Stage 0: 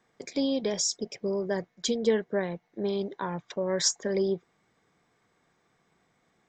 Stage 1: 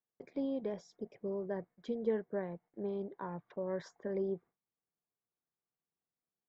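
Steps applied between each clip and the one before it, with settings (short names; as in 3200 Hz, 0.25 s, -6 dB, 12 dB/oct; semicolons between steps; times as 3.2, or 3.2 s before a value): LPF 1400 Hz 12 dB/oct; gate with hold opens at -54 dBFS; gain -8.5 dB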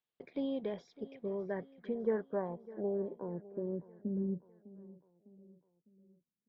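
low-pass sweep 3400 Hz -> 220 Hz, 1.24–4.02; feedback echo 0.604 s, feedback 50%, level -18.5 dB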